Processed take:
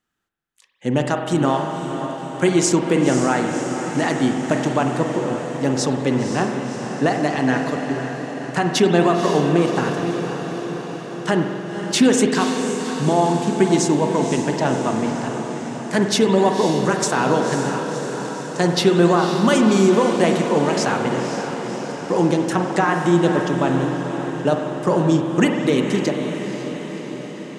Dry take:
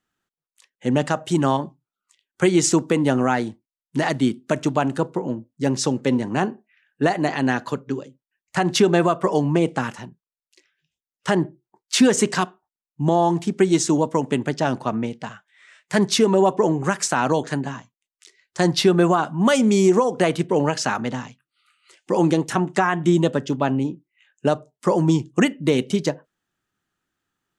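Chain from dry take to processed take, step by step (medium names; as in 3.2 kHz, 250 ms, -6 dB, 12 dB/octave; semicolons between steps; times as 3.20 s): echo that smears into a reverb 531 ms, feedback 67%, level -8 dB; spring tank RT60 2.1 s, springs 46 ms, chirp 55 ms, DRR 4.5 dB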